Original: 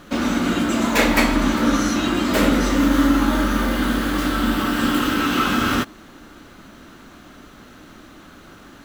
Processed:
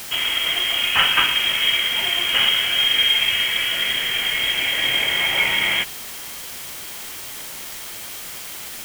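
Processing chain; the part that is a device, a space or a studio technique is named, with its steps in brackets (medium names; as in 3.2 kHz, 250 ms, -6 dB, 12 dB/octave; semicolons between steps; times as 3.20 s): scrambled radio voice (band-pass 300–2700 Hz; frequency inversion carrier 3.5 kHz; white noise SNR 12 dB); trim +2 dB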